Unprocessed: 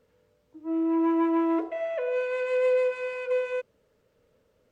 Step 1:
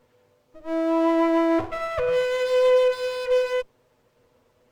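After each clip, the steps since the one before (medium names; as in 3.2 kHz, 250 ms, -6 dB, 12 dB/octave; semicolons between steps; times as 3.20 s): comb filter that takes the minimum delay 8.1 ms; trim +6 dB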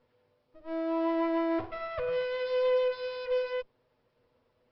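steep low-pass 5.4 kHz 96 dB/octave; trim -8.5 dB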